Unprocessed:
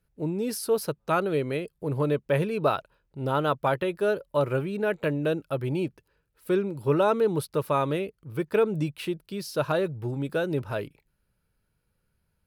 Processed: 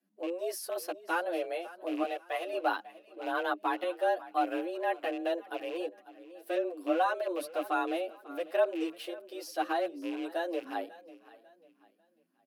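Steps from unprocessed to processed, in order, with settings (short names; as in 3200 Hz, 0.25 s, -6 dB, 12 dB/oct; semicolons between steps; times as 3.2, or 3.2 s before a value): rattling part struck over -31 dBFS, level -29 dBFS; 2.03–2.53 HPF 340 Hz 12 dB/oct; frequency shift +170 Hz; feedback echo 0.545 s, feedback 32%, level -18 dB; endless flanger 8.1 ms +1.2 Hz; gain -3.5 dB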